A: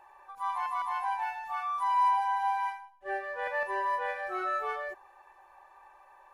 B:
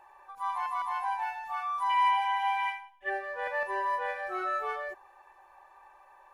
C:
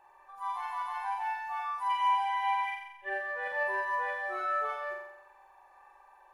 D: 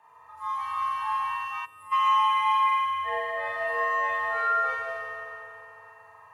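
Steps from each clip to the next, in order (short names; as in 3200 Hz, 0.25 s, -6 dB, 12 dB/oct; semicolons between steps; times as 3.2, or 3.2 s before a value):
spectral gain 1.9–3.09, 1600–3700 Hz +12 dB
flutter echo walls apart 7.6 m, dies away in 0.85 s; gain -5 dB
frequency shift +81 Hz; FDN reverb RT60 2.8 s, low-frequency decay 1.2×, high-frequency decay 0.9×, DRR -5 dB; spectral gain 1.65–1.92, 700–7300 Hz -18 dB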